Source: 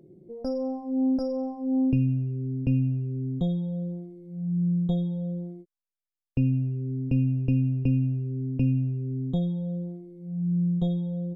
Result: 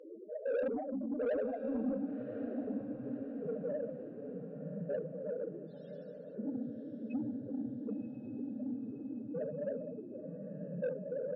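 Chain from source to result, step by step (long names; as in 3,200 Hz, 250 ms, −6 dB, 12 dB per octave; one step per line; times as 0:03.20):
compressor on every frequency bin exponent 0.6
high-pass filter 520 Hz 12 dB per octave
high-shelf EQ 2,100 Hz +10 dB
reversed playback
upward compression, threshold −49 dBFS
reversed playback
cochlear-implant simulation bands 12
shaped tremolo triangle 1.7 Hz, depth 50%
spectral peaks only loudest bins 4
mid-hump overdrive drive 17 dB, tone 2,500 Hz, clips at −27 dBFS
on a send: feedback delay with all-pass diffusion 1,062 ms, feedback 54%, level −9 dB
on the sum: level +1.5 dB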